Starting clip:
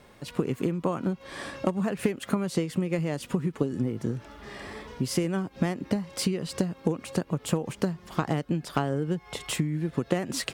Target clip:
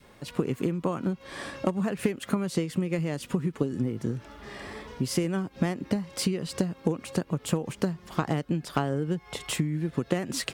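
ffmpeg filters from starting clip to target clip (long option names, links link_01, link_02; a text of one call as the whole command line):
ffmpeg -i in.wav -af "adynamicequalizer=threshold=0.00794:dfrequency=720:dqfactor=1.1:tfrequency=720:tqfactor=1.1:attack=5:release=100:ratio=0.375:range=1.5:mode=cutabove:tftype=bell" out.wav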